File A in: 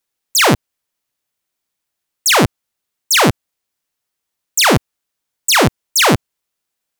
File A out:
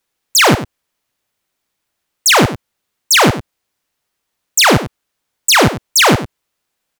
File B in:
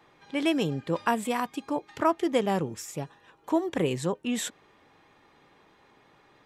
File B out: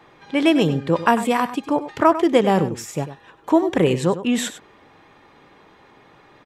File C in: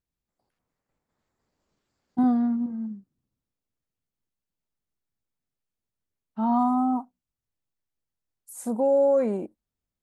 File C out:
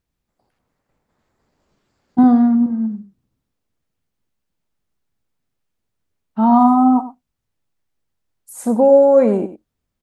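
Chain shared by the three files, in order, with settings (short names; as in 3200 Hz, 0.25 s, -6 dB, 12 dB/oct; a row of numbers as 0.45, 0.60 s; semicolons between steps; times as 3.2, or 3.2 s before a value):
high shelf 4600 Hz -6 dB; compressor, threshold -15 dBFS; echo 98 ms -13 dB; normalise peaks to -2 dBFS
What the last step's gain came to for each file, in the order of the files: +7.5, +9.5, +11.0 dB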